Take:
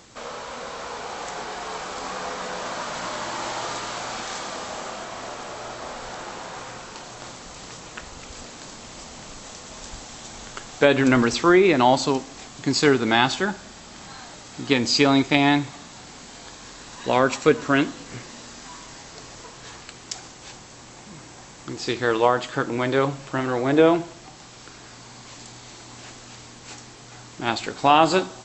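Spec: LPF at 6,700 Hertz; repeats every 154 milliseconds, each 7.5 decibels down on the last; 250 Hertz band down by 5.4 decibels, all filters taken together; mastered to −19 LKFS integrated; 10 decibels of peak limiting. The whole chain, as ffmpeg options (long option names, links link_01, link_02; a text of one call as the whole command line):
ffmpeg -i in.wav -af "lowpass=6700,equalizer=frequency=250:width_type=o:gain=-7,alimiter=limit=-12.5dB:level=0:latency=1,aecho=1:1:154|308|462|616|770:0.422|0.177|0.0744|0.0312|0.0131,volume=8dB" out.wav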